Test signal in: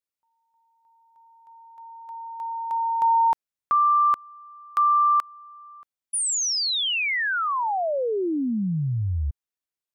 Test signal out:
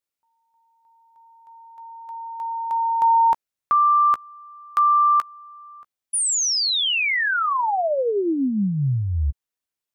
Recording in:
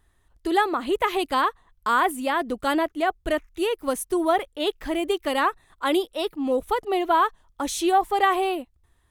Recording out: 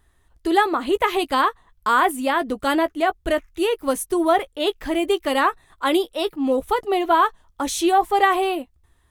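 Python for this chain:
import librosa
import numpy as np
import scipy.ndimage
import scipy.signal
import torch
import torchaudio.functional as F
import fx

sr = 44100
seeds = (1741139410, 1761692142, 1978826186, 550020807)

y = fx.doubler(x, sr, ms=15.0, db=-12.5)
y = y * 10.0 ** (3.0 / 20.0)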